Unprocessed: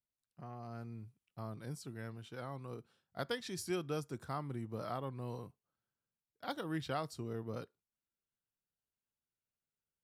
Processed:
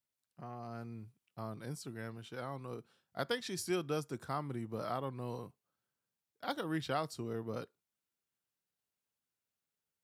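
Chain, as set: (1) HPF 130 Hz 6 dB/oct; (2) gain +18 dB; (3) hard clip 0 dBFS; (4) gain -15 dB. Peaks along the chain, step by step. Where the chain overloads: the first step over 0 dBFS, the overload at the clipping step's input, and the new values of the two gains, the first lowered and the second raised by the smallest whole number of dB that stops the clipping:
-23.5, -5.5, -5.5, -20.5 dBFS; no overload

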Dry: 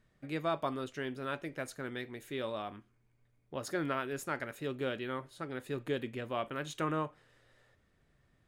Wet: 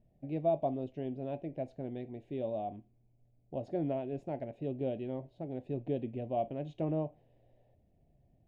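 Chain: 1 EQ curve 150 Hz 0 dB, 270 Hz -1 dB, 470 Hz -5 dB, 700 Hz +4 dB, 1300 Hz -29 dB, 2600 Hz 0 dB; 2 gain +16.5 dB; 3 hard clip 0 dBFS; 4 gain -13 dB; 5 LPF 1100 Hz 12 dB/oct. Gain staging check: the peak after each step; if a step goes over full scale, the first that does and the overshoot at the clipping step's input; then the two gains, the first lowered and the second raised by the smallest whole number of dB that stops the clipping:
-22.5, -6.0, -6.0, -19.0, -19.5 dBFS; no overload

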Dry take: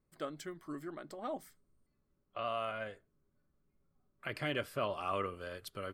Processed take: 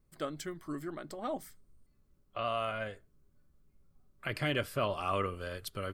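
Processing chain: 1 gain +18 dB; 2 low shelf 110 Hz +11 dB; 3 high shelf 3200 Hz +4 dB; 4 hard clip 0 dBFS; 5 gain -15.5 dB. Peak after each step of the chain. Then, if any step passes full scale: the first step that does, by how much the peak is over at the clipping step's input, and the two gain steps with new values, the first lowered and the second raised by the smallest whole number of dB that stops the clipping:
-4.5, -3.5, -3.0, -3.0, -18.5 dBFS; no overload

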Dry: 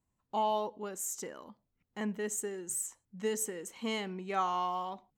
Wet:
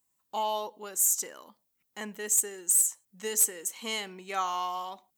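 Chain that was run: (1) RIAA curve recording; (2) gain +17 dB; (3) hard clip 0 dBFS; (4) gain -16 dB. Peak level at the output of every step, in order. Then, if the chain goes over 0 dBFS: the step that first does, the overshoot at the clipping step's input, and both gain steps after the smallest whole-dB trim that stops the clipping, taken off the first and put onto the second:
-10.5, +6.5, 0.0, -16.0 dBFS; step 2, 6.5 dB; step 2 +10 dB, step 4 -9 dB

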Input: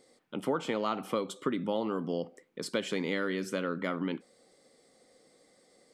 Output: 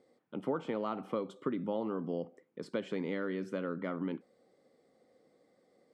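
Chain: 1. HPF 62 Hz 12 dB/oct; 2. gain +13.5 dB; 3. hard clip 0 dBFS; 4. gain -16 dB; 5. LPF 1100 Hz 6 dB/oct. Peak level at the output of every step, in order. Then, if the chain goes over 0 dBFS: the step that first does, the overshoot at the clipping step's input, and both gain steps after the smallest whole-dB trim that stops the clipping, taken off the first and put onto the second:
-15.5, -2.0, -2.0, -18.0, -21.0 dBFS; no overload

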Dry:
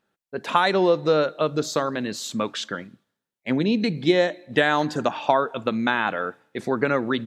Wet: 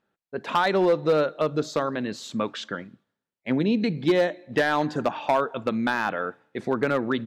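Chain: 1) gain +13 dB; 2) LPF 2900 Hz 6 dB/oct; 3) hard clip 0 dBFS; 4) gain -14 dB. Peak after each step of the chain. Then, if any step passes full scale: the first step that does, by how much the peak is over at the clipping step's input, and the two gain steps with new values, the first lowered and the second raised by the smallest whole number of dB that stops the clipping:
+9.0, +8.5, 0.0, -14.0 dBFS; step 1, 8.5 dB; step 1 +4 dB, step 4 -5 dB

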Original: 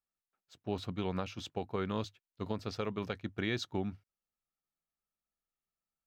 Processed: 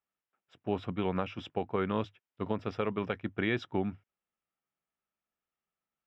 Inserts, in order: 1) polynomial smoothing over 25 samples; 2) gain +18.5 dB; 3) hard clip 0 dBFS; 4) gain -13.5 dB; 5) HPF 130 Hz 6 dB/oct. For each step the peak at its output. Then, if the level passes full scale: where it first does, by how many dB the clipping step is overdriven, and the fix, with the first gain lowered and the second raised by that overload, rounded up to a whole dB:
-21.0, -2.5, -2.5, -16.0, -15.5 dBFS; no overload

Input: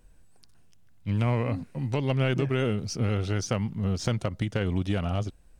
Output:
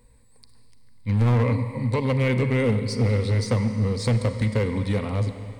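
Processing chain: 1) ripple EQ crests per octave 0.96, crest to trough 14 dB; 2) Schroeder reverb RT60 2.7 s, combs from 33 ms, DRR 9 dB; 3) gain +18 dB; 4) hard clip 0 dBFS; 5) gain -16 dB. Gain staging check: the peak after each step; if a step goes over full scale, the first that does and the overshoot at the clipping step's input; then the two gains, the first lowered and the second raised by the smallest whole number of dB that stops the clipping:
-10.5, -9.5, +8.5, 0.0, -16.0 dBFS; step 3, 8.5 dB; step 3 +9 dB, step 5 -7 dB

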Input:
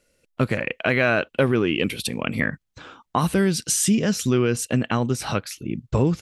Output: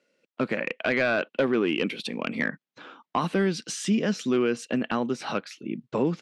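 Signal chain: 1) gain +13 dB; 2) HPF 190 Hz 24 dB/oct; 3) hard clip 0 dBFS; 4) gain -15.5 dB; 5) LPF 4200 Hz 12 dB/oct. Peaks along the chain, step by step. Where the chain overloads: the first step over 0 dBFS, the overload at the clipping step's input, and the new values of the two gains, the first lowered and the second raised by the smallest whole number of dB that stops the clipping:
+6.0, +7.5, 0.0, -15.5, -15.0 dBFS; step 1, 7.5 dB; step 1 +5 dB, step 4 -7.5 dB

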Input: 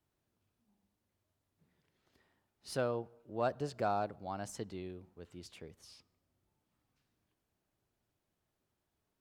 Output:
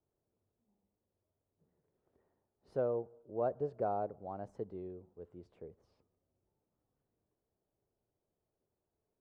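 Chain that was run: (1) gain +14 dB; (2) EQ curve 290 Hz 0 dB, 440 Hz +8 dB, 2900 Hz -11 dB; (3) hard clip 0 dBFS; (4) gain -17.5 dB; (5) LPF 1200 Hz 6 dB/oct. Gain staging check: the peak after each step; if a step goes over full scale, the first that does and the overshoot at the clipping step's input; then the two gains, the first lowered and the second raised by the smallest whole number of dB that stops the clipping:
-7.0, -4.5, -4.5, -22.0, -23.0 dBFS; no overload

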